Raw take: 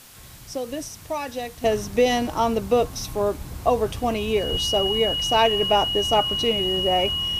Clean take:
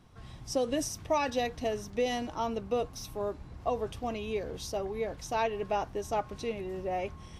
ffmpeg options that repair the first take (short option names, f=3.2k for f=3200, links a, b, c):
-filter_complex "[0:a]bandreject=f=2.9k:w=30,asplit=3[a][b][c];[a]afade=t=out:st=4.51:d=0.02[d];[b]highpass=f=140:w=0.5412,highpass=f=140:w=1.3066,afade=t=in:st=4.51:d=0.02,afade=t=out:st=4.63:d=0.02[e];[c]afade=t=in:st=4.63:d=0.02[f];[d][e][f]amix=inputs=3:normalize=0,afwtdn=0.005,asetnsamples=n=441:p=0,asendcmd='1.64 volume volume -11dB',volume=0dB"